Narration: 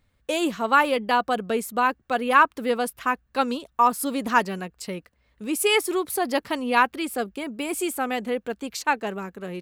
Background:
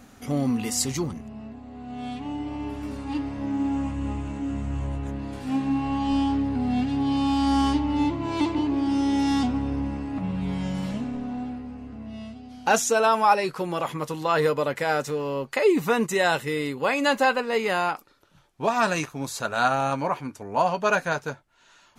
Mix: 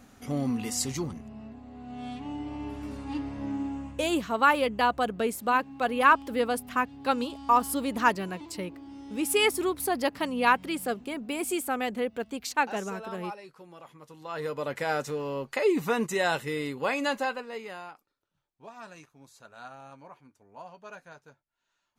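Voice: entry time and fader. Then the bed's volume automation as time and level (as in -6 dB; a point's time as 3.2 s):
3.70 s, -3.0 dB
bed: 3.51 s -4.5 dB
4.37 s -21 dB
14 s -21 dB
14.77 s -4.5 dB
16.95 s -4.5 dB
18.17 s -23 dB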